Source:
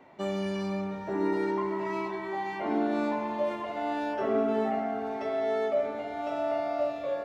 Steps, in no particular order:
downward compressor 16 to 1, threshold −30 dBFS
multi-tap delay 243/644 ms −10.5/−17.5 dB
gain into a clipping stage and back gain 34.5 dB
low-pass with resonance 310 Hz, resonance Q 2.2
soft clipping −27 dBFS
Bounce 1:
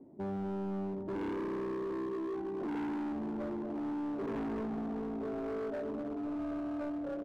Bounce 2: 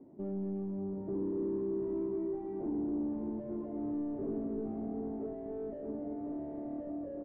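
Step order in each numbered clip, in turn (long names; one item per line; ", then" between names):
low-pass with resonance, then soft clipping, then multi-tap delay, then downward compressor, then gain into a clipping stage and back
gain into a clipping stage and back, then low-pass with resonance, then downward compressor, then soft clipping, then multi-tap delay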